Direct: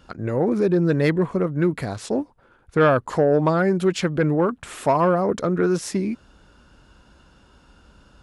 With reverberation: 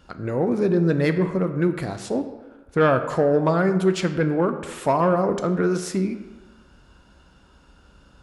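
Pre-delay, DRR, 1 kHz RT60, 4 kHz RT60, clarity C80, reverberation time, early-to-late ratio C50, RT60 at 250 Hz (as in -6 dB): 8 ms, 8.0 dB, 1.2 s, 0.75 s, 11.5 dB, 1.2 s, 10.5 dB, 1.2 s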